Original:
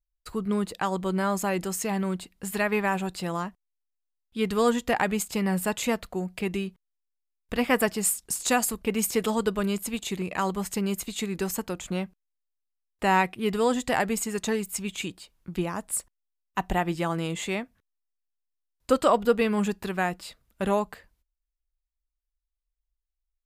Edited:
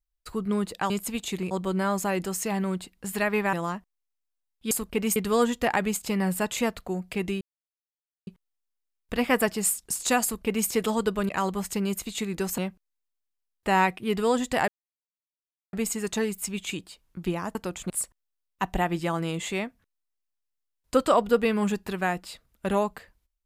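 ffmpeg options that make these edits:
-filter_complex "[0:a]asplit=12[s0][s1][s2][s3][s4][s5][s6][s7][s8][s9][s10][s11];[s0]atrim=end=0.902[s12];[s1]atrim=start=9.688:end=10.302[s13];[s2]atrim=start=0.898:end=2.922[s14];[s3]atrim=start=3.238:end=4.422[s15];[s4]atrim=start=8.628:end=9.082[s16];[s5]atrim=start=4.418:end=6.67,asetpts=PTS-STARTPTS,afade=t=out:st=2.248:d=0.004:c=hsin,apad=pad_dur=0.86[s17];[s6]atrim=start=6.67:end=9.692,asetpts=PTS-STARTPTS,afade=t=in:d=0.004:c=hsin[s18];[s7]atrim=start=10.298:end=11.592[s19];[s8]atrim=start=11.938:end=14.04,asetpts=PTS-STARTPTS,afade=t=out:st=2.098:d=0.004:c=hsin,apad=pad_dur=1.05[s20];[s9]atrim=start=14.04:end=15.862,asetpts=PTS-STARTPTS,afade=t=in:d=0.004:c=hsin[s21];[s10]atrim=start=11.588:end=11.942[s22];[s11]atrim=start=15.858[s23];[s12][s13]acrossfade=d=0.004:c1=hsin:c2=hsin[s24];[s24][s14]acrossfade=d=0.004:c1=hsin:c2=hsin[s25];[s25][s15]acrossfade=d=0.004:c1=hsin:c2=hsin[s26];[s26][s16]acrossfade=d=0.004:c1=hsin:c2=hsin[s27];[s17][s18]concat=n=2:v=0:a=1[s28];[s27][s28]acrossfade=d=0.004:c1=hsin:c2=hsin[s29];[s29][s19]acrossfade=d=0.004:c1=hsin:c2=hsin[s30];[s20][s21]concat=n=2:v=0:a=1[s31];[s30][s31]acrossfade=d=0.004:c1=hsin:c2=hsin[s32];[s32][s22]acrossfade=d=0.004:c1=hsin:c2=hsin[s33];[s33][s23]acrossfade=d=0.004:c1=hsin:c2=hsin"

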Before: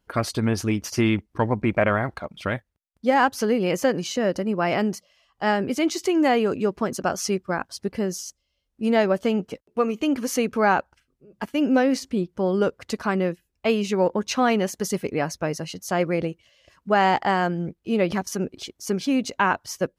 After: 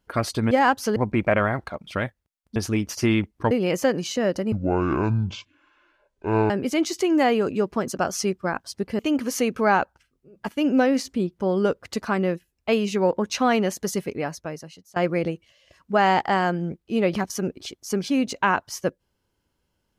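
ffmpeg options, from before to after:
-filter_complex "[0:a]asplit=9[s0][s1][s2][s3][s4][s5][s6][s7][s8];[s0]atrim=end=0.512[s9];[s1]atrim=start=3.058:end=3.512[s10];[s2]atrim=start=1.458:end=3.062[s11];[s3]atrim=start=0.508:end=1.462[s12];[s4]atrim=start=3.508:end=4.524[s13];[s5]atrim=start=4.52:end=5.55,asetpts=PTS-STARTPTS,asetrate=22932,aresample=44100[s14];[s6]atrim=start=5.546:end=8.042[s15];[s7]atrim=start=9.958:end=15.93,asetpts=PTS-STARTPTS,afade=t=out:st=4.862:d=1.11:silence=0.0707946[s16];[s8]atrim=start=15.93,asetpts=PTS-STARTPTS,afade=t=in:d=0.004:c=hsin:silence=0.0707946[s17];[s9][s10]acrossfade=d=0.004:c1=hsin:c2=hsin[s18];[s18][s11]acrossfade=d=0.004:c1=hsin:c2=hsin[s19];[s19][s12]acrossfade=d=0.004:c1=hsin:c2=hsin[s20];[s20][s13]acrossfade=d=0.004:c1=hsin:c2=hsin[s21];[s21][s14]acrossfade=d=0.004:c1=hsin:c2=hsin[s22];[s22][s15]acrossfade=d=0.004:c1=hsin:c2=hsin[s23];[s16][s17]concat=n=2:v=0:a=1[s24];[s23][s24]acrossfade=d=0.004:c1=hsin:c2=hsin"

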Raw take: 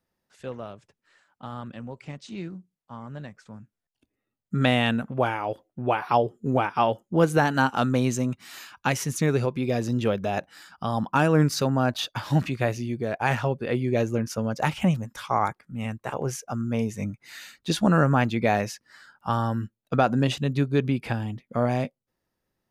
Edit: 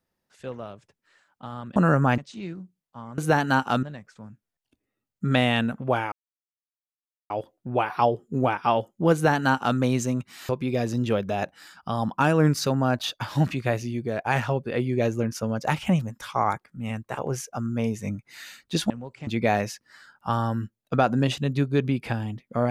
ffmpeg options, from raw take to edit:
-filter_complex "[0:a]asplit=9[s0][s1][s2][s3][s4][s5][s6][s7][s8];[s0]atrim=end=1.762[s9];[s1]atrim=start=17.848:end=18.272[s10];[s2]atrim=start=2.128:end=3.132[s11];[s3]atrim=start=7.248:end=7.902[s12];[s4]atrim=start=3.128:end=5.42,asetpts=PTS-STARTPTS,afade=t=out:st=2.288:d=0.004:c=hsin,apad=pad_dur=1.18[s13];[s5]atrim=start=5.42:end=8.612,asetpts=PTS-STARTPTS,afade=t=in:d=0.004:c=hsin[s14];[s6]atrim=start=9.438:end=17.852[s15];[s7]atrim=start=1.758:end=2.132[s16];[s8]atrim=start=18.268[s17];[s9][s10]acrossfade=d=0.004:c1=hsin:c2=hsin[s18];[s18][s11]acrossfade=d=0.004:c1=hsin:c2=hsin[s19];[s19][s12]acrossfade=d=0.004:c1=hsin:c2=hsin[s20];[s13][s14]concat=n=2:v=0:a=1[s21];[s20][s21]acrossfade=d=0.004:c1=hsin:c2=hsin[s22];[s22][s15]acrossfade=d=0.004:c1=hsin:c2=hsin[s23];[s23][s16]acrossfade=d=0.004:c1=hsin:c2=hsin[s24];[s24][s17]acrossfade=d=0.004:c1=hsin:c2=hsin"

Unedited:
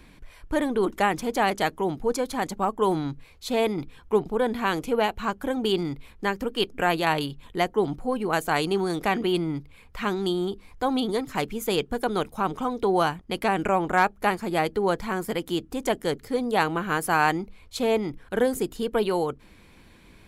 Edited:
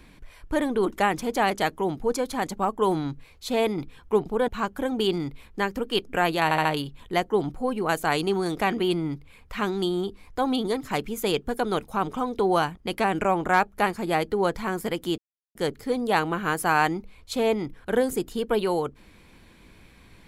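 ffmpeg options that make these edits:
-filter_complex "[0:a]asplit=7[s0][s1][s2][s3][s4][s5][s6];[s0]atrim=end=4.482[s7];[s1]atrim=start=5.128:end=7.162[s8];[s2]atrim=start=7.088:end=7.162[s9];[s3]atrim=start=7.088:end=7.162[s10];[s4]atrim=start=7.088:end=15.62,asetpts=PTS-STARTPTS,afade=t=out:st=8.528:d=0.004:c=hsin[s11];[s5]atrim=start=15.62:end=15.99,asetpts=PTS-STARTPTS,volume=0[s12];[s6]atrim=start=15.99,asetpts=PTS-STARTPTS,afade=t=in:d=0.004:c=hsin[s13];[s7][s8]acrossfade=d=0.004:c1=hsin:c2=hsin[s14];[s14][s9]acrossfade=d=0.004:c1=hsin:c2=hsin[s15];[s15][s10]acrossfade=d=0.004:c1=hsin:c2=hsin[s16];[s11][s12][s13]concat=n=3:v=0:a=1[s17];[s16][s17]acrossfade=d=0.004:c1=hsin:c2=hsin"

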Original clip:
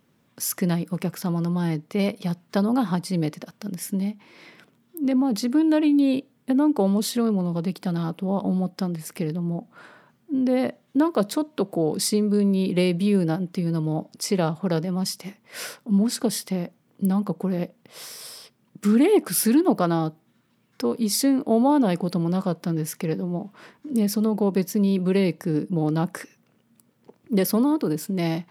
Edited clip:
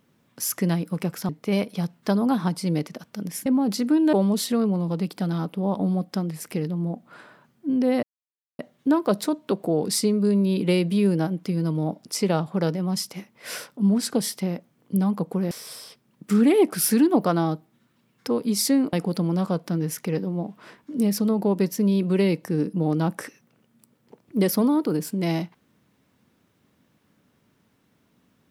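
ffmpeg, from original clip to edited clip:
-filter_complex "[0:a]asplit=7[s0][s1][s2][s3][s4][s5][s6];[s0]atrim=end=1.292[s7];[s1]atrim=start=1.758:end=3.932[s8];[s2]atrim=start=5.098:end=5.772[s9];[s3]atrim=start=6.778:end=10.68,asetpts=PTS-STARTPTS,afade=t=out:st=3.898:d=0.004:c=hsin,apad=pad_dur=0.56[s10];[s4]atrim=start=10.68:end=17.602,asetpts=PTS-STARTPTS,afade=t=in:d=0.004:c=hsin[s11];[s5]atrim=start=18.048:end=21.472[s12];[s6]atrim=start=21.888[s13];[s7][s8]acrossfade=d=0.004:c1=hsin:c2=hsin[s14];[s14][s9]acrossfade=d=0.004:c1=hsin:c2=hsin[s15];[s10][s11]concat=n=2:v=0:a=1[s16];[s15][s16]acrossfade=d=0.004:c1=hsin:c2=hsin[s17];[s17][s12]acrossfade=d=0.004:c1=hsin:c2=hsin[s18];[s18][s13]acrossfade=d=0.004:c1=hsin:c2=hsin"

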